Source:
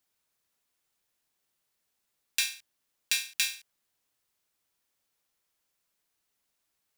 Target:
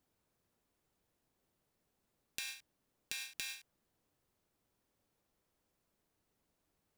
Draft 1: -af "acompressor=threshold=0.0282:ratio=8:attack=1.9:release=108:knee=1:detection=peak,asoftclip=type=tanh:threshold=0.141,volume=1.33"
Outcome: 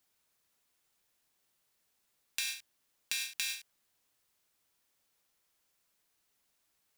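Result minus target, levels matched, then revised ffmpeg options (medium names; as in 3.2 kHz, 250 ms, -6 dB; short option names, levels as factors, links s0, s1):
1 kHz band -5.0 dB
-af "acompressor=threshold=0.0282:ratio=8:attack=1.9:release=108:knee=1:detection=peak,tiltshelf=f=930:g=9,asoftclip=type=tanh:threshold=0.141,volume=1.33"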